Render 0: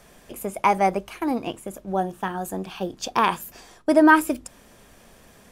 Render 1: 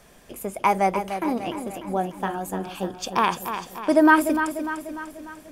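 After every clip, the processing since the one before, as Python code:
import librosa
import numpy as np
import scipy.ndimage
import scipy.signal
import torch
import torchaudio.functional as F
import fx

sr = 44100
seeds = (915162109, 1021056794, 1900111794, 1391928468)

y = fx.echo_feedback(x, sr, ms=297, feedback_pct=54, wet_db=-9.0)
y = y * librosa.db_to_amplitude(-1.0)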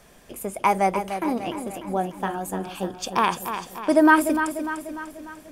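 y = fx.dynamic_eq(x, sr, hz=9000.0, q=2.5, threshold_db=-53.0, ratio=4.0, max_db=4)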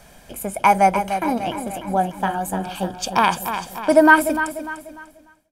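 y = fx.fade_out_tail(x, sr, length_s=1.53)
y = y + 0.45 * np.pad(y, (int(1.3 * sr / 1000.0), 0))[:len(y)]
y = y * librosa.db_to_amplitude(4.0)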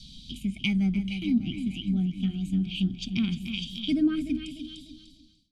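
y = scipy.signal.sosfilt(scipy.signal.ellip(3, 1.0, 40, [250.0, 3400.0], 'bandstop', fs=sr, output='sos'), x)
y = fx.envelope_lowpass(y, sr, base_hz=580.0, top_hz=4300.0, q=4.0, full_db=-17.5, direction='down')
y = y * librosa.db_to_amplitude(2.5)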